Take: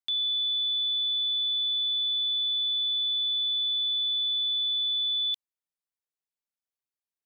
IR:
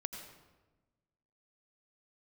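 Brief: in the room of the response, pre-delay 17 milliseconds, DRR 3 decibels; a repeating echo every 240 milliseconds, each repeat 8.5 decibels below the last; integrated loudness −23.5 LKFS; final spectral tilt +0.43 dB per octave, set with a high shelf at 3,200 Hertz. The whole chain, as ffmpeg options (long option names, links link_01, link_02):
-filter_complex "[0:a]highshelf=frequency=3200:gain=-3.5,aecho=1:1:240|480|720|960:0.376|0.143|0.0543|0.0206,asplit=2[link_01][link_02];[1:a]atrim=start_sample=2205,adelay=17[link_03];[link_02][link_03]afir=irnorm=-1:irlink=0,volume=-2.5dB[link_04];[link_01][link_04]amix=inputs=2:normalize=0,volume=0.5dB"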